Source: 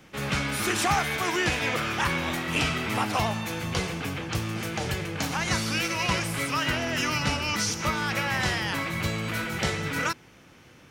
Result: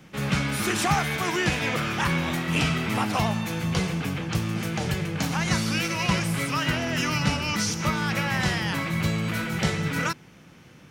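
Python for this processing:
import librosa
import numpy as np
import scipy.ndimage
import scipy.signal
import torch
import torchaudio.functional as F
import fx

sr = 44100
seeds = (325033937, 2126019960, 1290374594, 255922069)

y = fx.peak_eq(x, sr, hz=170.0, db=8.0, octaves=0.83)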